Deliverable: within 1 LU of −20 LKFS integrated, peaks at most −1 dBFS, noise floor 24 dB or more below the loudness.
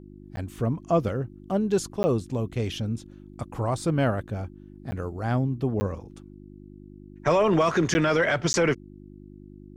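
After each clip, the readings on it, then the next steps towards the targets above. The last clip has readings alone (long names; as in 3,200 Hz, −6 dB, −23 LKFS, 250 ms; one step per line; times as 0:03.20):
number of dropouts 6; longest dropout 10 ms; mains hum 50 Hz; hum harmonics up to 350 Hz; level of the hum −45 dBFS; integrated loudness −26.0 LKFS; sample peak −12.5 dBFS; target loudness −20.0 LKFS
→ repair the gap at 0:00.36/0:02.03/0:04.91/0:05.80/0:07.94/0:08.53, 10 ms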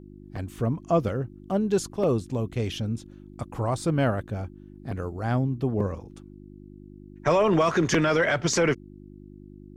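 number of dropouts 0; mains hum 50 Hz; hum harmonics up to 350 Hz; level of the hum −45 dBFS
→ hum removal 50 Hz, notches 7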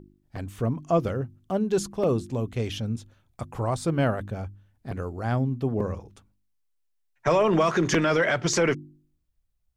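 mains hum none found; integrated loudness −26.0 LKFS; sample peak −8.5 dBFS; target loudness −20.0 LKFS
→ level +6 dB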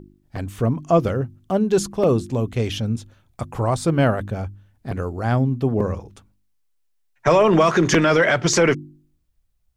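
integrated loudness −20.0 LKFS; sample peak −2.5 dBFS; background noise floor −66 dBFS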